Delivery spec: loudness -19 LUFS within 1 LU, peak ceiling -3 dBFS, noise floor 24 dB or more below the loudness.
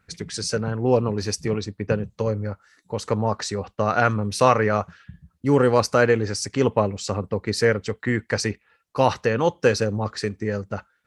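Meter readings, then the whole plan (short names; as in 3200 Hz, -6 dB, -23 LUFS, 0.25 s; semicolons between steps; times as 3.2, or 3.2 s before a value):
loudness -23.0 LUFS; peak -2.5 dBFS; loudness target -19.0 LUFS
-> gain +4 dB; limiter -3 dBFS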